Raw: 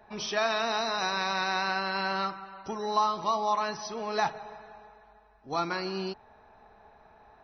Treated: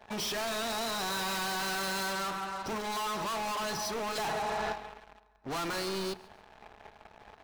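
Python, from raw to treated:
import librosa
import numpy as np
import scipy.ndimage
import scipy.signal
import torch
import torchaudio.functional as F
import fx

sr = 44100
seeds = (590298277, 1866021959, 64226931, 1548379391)

p1 = fx.zero_step(x, sr, step_db=-43.5, at=(1.1, 2.11))
p2 = fx.leveller(p1, sr, passes=3)
p3 = np.clip(10.0 ** (33.0 / 20.0) * p2, -1.0, 1.0) / 10.0 ** (33.0 / 20.0)
p4 = fx.hum_notches(p3, sr, base_hz=60, count=7)
p5 = p4 + fx.echo_feedback(p4, sr, ms=142, feedback_pct=36, wet_db=-21.5, dry=0)
y = fx.env_flatten(p5, sr, amount_pct=100, at=(4.15, 4.72), fade=0.02)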